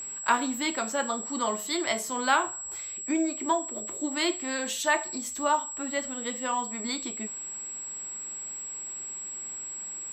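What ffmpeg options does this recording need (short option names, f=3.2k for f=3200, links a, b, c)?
-af "adeclick=t=4,bandreject=f=7.7k:w=30"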